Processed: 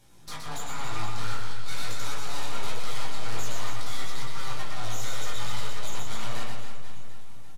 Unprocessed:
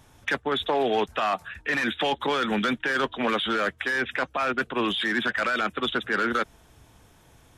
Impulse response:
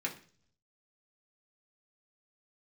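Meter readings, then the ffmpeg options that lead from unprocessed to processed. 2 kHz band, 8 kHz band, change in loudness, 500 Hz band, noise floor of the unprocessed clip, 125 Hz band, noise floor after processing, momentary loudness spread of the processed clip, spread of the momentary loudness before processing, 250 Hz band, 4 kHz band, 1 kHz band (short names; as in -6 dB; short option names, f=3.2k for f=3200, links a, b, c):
-14.0 dB, +10.0 dB, -10.0 dB, -15.5 dB, -57 dBFS, +5.5 dB, -34 dBFS, 8 LU, 4 LU, -16.0 dB, -7.0 dB, -10.0 dB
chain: -filter_complex "[0:a]equalizer=f=1.1k:t=o:w=0.36:g=-14.5,bandreject=f=1.4k:w=7.5,aeval=exprs='val(0)+0.00224*(sin(2*PI*60*n/s)+sin(2*PI*2*60*n/s)/2+sin(2*PI*3*60*n/s)/3+sin(2*PI*4*60*n/s)/4+sin(2*PI*5*60*n/s)/5)':c=same,aeval=exprs='abs(val(0))':c=same,highshelf=f=2.5k:g=7.5,asoftclip=type=tanh:threshold=-26dB,flanger=delay=16:depth=3:speed=1.4,aecho=1:1:120|276|478.8|742.4|1085:0.631|0.398|0.251|0.158|0.1[a];[1:a]atrim=start_sample=2205,asetrate=24255,aresample=44100[b];[a][b]afir=irnorm=-1:irlink=0,volume=-6dB"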